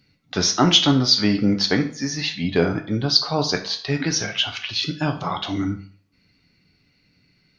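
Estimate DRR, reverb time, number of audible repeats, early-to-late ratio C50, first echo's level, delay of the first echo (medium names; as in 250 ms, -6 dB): 4.0 dB, 0.45 s, no echo, 11.5 dB, no echo, no echo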